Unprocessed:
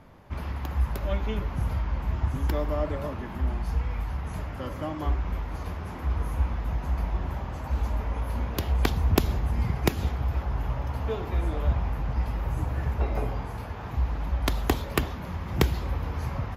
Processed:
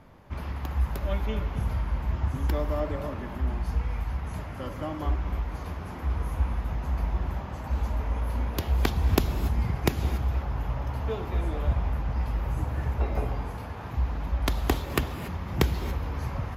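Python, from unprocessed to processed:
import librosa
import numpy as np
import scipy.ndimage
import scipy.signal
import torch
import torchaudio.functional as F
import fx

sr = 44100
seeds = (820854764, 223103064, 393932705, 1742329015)

y = fx.rev_gated(x, sr, seeds[0], gate_ms=310, shape='rising', drr_db=11.0)
y = y * librosa.db_to_amplitude(-1.0)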